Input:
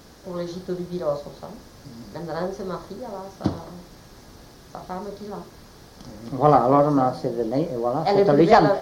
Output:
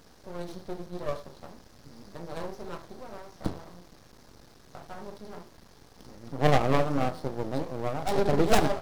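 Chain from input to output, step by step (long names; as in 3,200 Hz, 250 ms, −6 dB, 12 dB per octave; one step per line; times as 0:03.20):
stylus tracing distortion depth 0.49 ms
half-wave rectification
level −4.5 dB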